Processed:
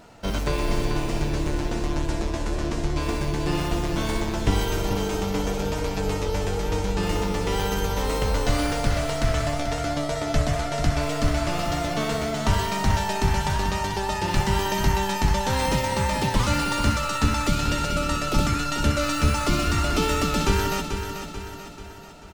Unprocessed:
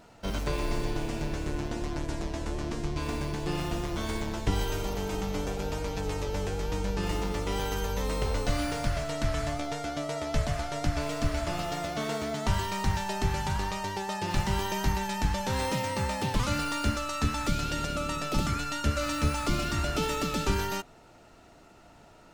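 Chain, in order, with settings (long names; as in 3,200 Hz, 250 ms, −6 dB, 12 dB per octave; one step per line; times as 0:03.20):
repeating echo 438 ms, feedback 50%, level −8 dB
level +5.5 dB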